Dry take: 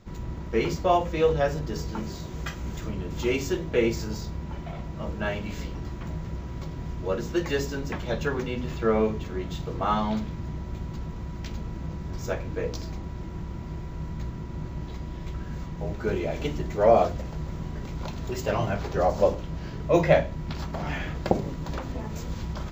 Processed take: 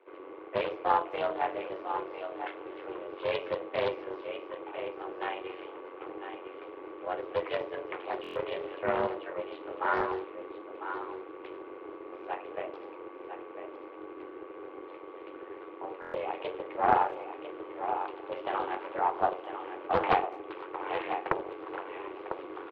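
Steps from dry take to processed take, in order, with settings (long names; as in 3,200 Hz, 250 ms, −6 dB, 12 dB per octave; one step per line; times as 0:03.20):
thirty-one-band graphic EQ 500 Hz −8 dB, 800 Hz +3 dB, 1,600 Hz −5 dB
amplitude modulation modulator 92 Hz, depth 65%
in parallel at −11.5 dB: hard clipping −24.5 dBFS, distortion −9 dB
on the sum: high-frequency loss of the air 52 metres
on a send: single-tap delay 1,000 ms −8.5 dB
on the sum: single-sideband voice off tune +160 Hz 200–2,800 Hz
far-end echo of a speakerphone 210 ms, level −24 dB
buffer that repeats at 0:08.22/0:16.00, samples 1,024, times 5
highs frequency-modulated by the lows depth 0.5 ms
level −1.5 dB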